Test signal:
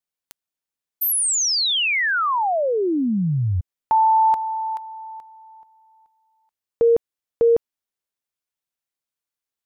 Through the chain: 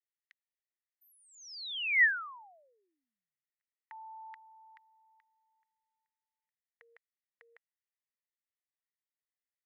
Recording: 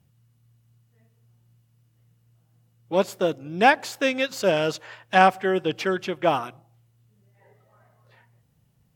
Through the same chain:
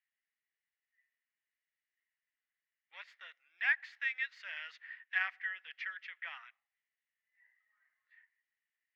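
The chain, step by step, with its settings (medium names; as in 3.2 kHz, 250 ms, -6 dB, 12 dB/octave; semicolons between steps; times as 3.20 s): ladder high-pass 1.8 kHz, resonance 80%; distance through air 260 m; trim -3 dB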